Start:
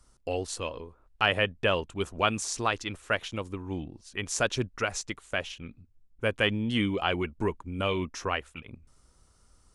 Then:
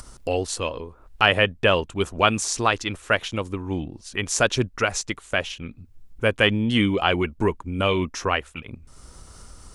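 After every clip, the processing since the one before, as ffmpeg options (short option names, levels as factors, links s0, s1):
-af "acompressor=mode=upward:threshold=0.0112:ratio=2.5,volume=2.24"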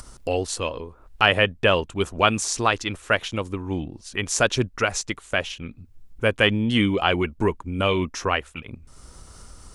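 -af anull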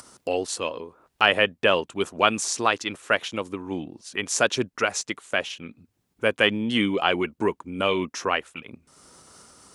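-af "highpass=200,volume=0.891"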